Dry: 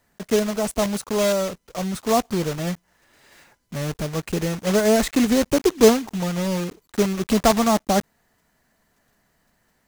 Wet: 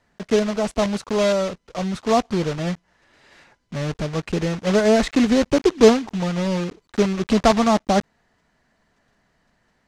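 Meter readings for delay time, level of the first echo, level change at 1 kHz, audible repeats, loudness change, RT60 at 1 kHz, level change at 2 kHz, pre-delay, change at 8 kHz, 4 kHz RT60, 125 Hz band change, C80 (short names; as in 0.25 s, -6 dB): none, none, +1.5 dB, none, +1.0 dB, none, +1.5 dB, none, -5.0 dB, none, +1.5 dB, none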